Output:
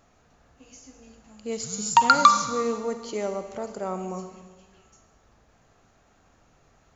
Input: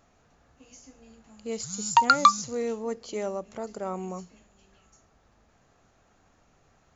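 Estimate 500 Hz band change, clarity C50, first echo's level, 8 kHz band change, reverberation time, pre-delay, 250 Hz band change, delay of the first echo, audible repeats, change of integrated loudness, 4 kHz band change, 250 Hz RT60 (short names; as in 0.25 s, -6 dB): +2.5 dB, 8.5 dB, none, n/a, 1.4 s, 39 ms, +2.5 dB, none, none, +2.5 dB, +2.5 dB, 1.3 s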